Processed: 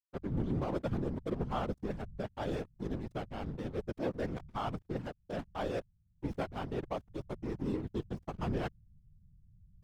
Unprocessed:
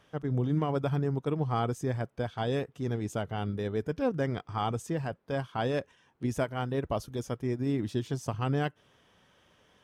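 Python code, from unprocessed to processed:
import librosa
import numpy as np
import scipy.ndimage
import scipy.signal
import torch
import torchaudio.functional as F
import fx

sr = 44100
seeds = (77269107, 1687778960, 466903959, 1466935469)

y = fx.backlash(x, sr, play_db=-29.5)
y = fx.whisperise(y, sr, seeds[0])
y = F.gain(torch.from_numpy(y), -4.5).numpy()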